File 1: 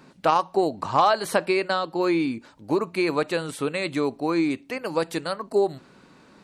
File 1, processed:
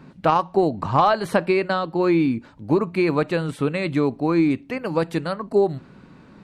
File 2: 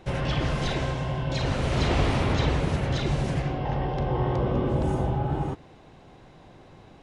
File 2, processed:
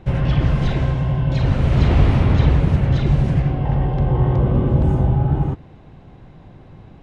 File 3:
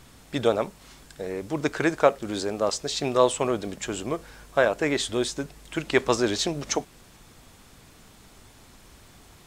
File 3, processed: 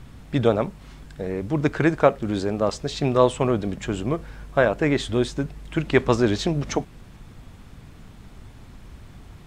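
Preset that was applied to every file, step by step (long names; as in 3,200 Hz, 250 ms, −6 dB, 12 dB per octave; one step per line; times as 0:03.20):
bass and treble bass +10 dB, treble −9 dB
level +1.5 dB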